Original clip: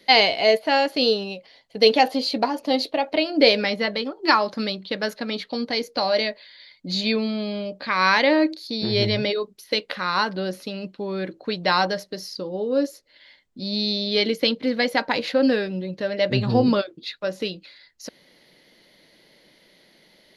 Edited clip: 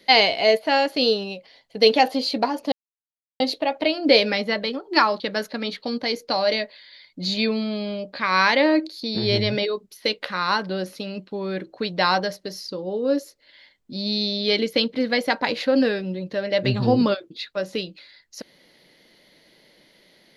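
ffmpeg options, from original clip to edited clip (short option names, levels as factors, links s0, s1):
-filter_complex "[0:a]asplit=3[s0][s1][s2];[s0]atrim=end=2.72,asetpts=PTS-STARTPTS,afade=t=out:st=2.716:d=0.004:c=hsin,apad=pad_dur=0.68[s3];[s1]atrim=start=2.72:end=4.522,asetpts=PTS-STARTPTS,afade=t=in:d=0.004:c=hsin[s4];[s2]atrim=start=4.868[s5];[s3][s4]concat=n=2:v=0:a=1[s6];[s6][s5]acrossfade=d=0.004:c1=hsin:c2=hsin"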